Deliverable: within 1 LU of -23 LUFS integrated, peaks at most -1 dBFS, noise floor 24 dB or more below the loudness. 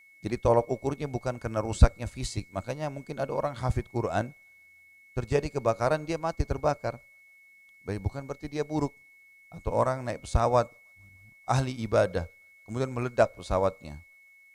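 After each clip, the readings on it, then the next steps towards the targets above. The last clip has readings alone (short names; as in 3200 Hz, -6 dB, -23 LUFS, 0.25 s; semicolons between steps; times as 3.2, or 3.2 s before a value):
steady tone 2200 Hz; tone level -54 dBFS; loudness -29.5 LUFS; peak -4.5 dBFS; loudness target -23.0 LUFS
-> notch 2200 Hz, Q 30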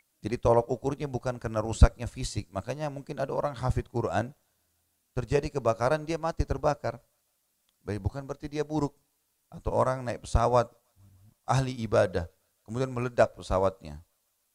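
steady tone none; loudness -29.5 LUFS; peak -4.5 dBFS; loudness target -23.0 LUFS
-> gain +6.5 dB; limiter -1 dBFS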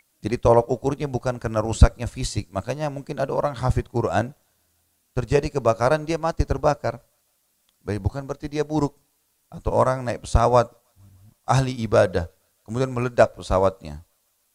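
loudness -23.0 LUFS; peak -1.0 dBFS; noise floor -68 dBFS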